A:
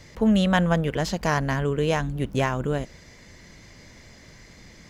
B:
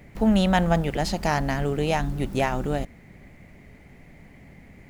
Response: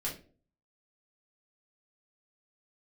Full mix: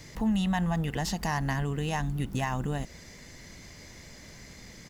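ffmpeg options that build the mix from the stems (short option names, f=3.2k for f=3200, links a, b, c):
-filter_complex "[0:a]alimiter=limit=-16dB:level=0:latency=1:release=79,highshelf=f=6.8k:g=10,volume=-1.5dB[a];[1:a]adelay=0.9,volume=-7.5dB[b];[a][b]amix=inputs=2:normalize=0,acompressor=threshold=-32dB:ratio=1.5"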